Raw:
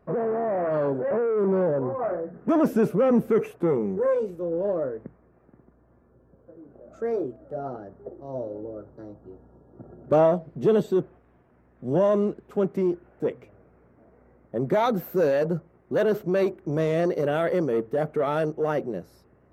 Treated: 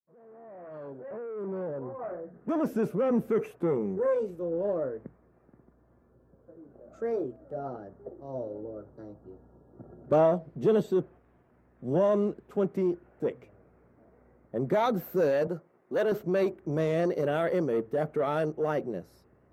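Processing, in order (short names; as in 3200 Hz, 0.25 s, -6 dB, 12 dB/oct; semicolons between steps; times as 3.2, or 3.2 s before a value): opening faded in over 4.12 s; 15.47–16.12 Bessel high-pass 280 Hz, order 2; gain -3.5 dB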